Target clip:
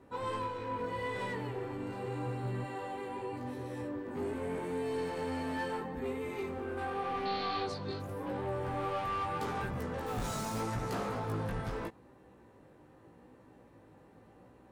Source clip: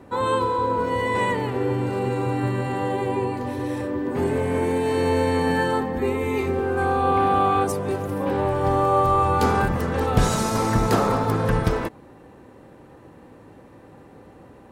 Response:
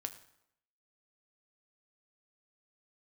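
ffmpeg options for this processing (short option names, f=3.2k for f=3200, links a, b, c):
-filter_complex "[0:a]asettb=1/sr,asplit=3[a][b][c];[a]atrim=end=2.644[d];[b]atrim=start=2.64:end=3.33,asetpts=PTS-STARTPTS,afade=t=in:d=0.004:c=qsin,afade=t=out:st=0.686:d=0.004:c=qsin,highpass=f=300:p=1[e];[c]atrim=start=3.326[f];[d][e]acrossfade=d=0.004:c1=hsin:c2=qsin[g];[g][f]acrossfade=d=0.004:c1=qsin:c2=hsin,asoftclip=type=tanh:threshold=-20dB,asettb=1/sr,asplit=3[h][i][j];[h]atrim=end=7.254[k];[i]atrim=start=7.25:end=8,asetpts=PTS-STARTPTS,afade=t=in:d=0.004:c=qsin,afade=t=out:st=0.746:d=0.004:c=qsin,lowpass=f=4.3k:t=q:w=10[l];[j]atrim=start=7.996[m];[k][l]acrossfade=d=0.004:c1=hsin:c2=qsin[n];[n][m]acrossfade=d=0.004:c1=qsin:c2=hsin,asettb=1/sr,asplit=3[o][p][q];[o]atrim=end=10.064[r];[p]atrim=start=10.06:end=10.61,asetpts=PTS-STARTPTS,afade=t=in:d=0.004:c=qsin,afade=t=out:st=0.546:d=0.004:c=qsin,acrusher=bits=3:mode=log:mix=0:aa=0.000001[s];[q]atrim=start=10.606[t];[r][s]acrossfade=d=0.004:c1=hsin:c2=qsin[u];[u][t]acrossfade=d=0.004:c1=qsin:c2=hsin,flanger=delay=15.5:depth=4.2:speed=0.82,volume=-8.5dB"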